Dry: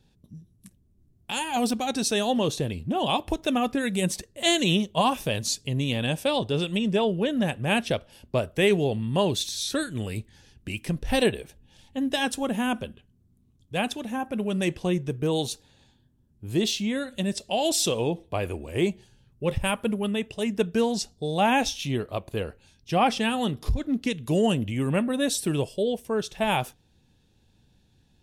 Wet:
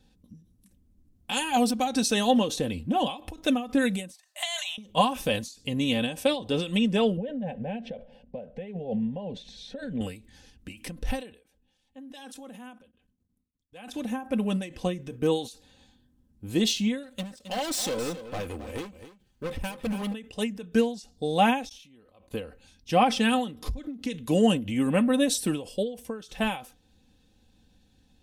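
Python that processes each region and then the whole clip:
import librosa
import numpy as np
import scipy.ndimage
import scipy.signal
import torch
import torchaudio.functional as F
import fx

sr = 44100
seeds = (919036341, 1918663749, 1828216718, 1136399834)

y = fx.chain(x, sr, fx.over_compress(threshold_db=-29.0, ratio=-1.0),
    fx.brickwall_highpass(low_hz=600.0), at=(4.14, 4.78))
y = fx.chain(y, sr, fx.lowpass(hz=1400.0, slope=12),
    fx.over_compress(threshold_db=-30.0, ratio=-1.0),
    fx.fixed_phaser(hz=320.0, stages=6), at=(7.17, 10.01))
y = fx.chain(y, sr, fx.low_shelf(hz=160.0, db=-8.5),
    fx.level_steps(step_db=23),
    fx.band_widen(depth_pct=40), at=(11.32, 13.88))
y = fx.chain(y, sr, fx.law_mismatch(coded='A'),
    fx.clip_hard(threshold_db=-29.0),
    fx.echo_single(ms=268, db=-11.5), at=(17.03, 20.14))
y = fx.chain(y, sr, fx.gate_flip(shuts_db=-34.0, range_db=-30),
    fx.sustainer(db_per_s=54.0), at=(21.69, 22.31))
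y = y + 0.59 * np.pad(y, (int(3.9 * sr / 1000.0), 0))[:len(y)]
y = fx.end_taper(y, sr, db_per_s=130.0)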